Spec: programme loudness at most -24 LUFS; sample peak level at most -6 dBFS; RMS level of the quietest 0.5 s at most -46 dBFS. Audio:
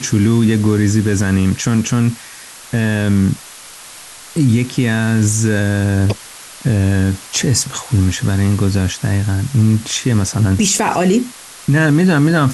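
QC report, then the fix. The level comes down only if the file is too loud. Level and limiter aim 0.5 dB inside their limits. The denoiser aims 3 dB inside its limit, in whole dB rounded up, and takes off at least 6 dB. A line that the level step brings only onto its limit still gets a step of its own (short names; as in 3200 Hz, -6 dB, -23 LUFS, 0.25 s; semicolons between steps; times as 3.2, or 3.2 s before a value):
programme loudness -15.5 LUFS: fail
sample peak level -4.0 dBFS: fail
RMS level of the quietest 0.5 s -36 dBFS: fail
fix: denoiser 6 dB, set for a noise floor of -36 dBFS; gain -9 dB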